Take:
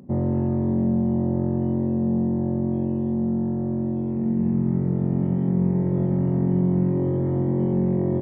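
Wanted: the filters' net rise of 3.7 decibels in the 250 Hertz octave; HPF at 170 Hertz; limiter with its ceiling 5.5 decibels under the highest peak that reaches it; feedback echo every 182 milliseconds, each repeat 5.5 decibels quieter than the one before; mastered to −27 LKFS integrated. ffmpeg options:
ffmpeg -i in.wav -af "highpass=170,equalizer=frequency=250:width_type=o:gain=6.5,alimiter=limit=-15.5dB:level=0:latency=1,aecho=1:1:182|364|546|728|910|1092|1274:0.531|0.281|0.149|0.079|0.0419|0.0222|0.0118,volume=-8dB" out.wav

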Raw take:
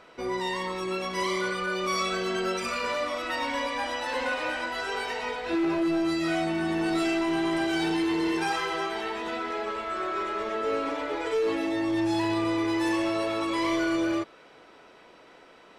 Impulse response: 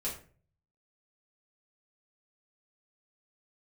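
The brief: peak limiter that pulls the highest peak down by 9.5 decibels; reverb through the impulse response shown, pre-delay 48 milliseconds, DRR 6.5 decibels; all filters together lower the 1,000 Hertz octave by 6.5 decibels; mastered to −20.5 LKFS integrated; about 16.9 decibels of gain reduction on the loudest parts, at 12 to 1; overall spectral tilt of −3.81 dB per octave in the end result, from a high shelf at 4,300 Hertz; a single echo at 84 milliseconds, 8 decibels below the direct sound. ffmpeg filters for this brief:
-filter_complex "[0:a]equalizer=frequency=1000:width_type=o:gain=-8,highshelf=frequency=4300:gain=-6,acompressor=threshold=-42dB:ratio=12,alimiter=level_in=17dB:limit=-24dB:level=0:latency=1,volume=-17dB,aecho=1:1:84:0.398,asplit=2[link_01][link_02];[1:a]atrim=start_sample=2205,adelay=48[link_03];[link_02][link_03]afir=irnorm=-1:irlink=0,volume=-9dB[link_04];[link_01][link_04]amix=inputs=2:normalize=0,volume=25dB"

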